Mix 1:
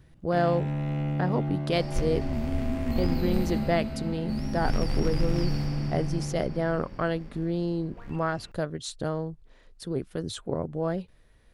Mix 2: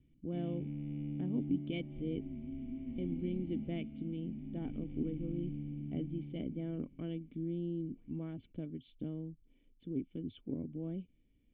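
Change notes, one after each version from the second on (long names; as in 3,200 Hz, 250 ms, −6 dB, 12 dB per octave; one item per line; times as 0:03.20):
first sound −3.0 dB
second sound −9.5 dB
master: add formant resonators in series i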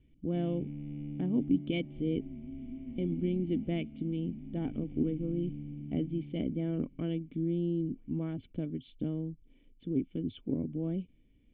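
speech +6.5 dB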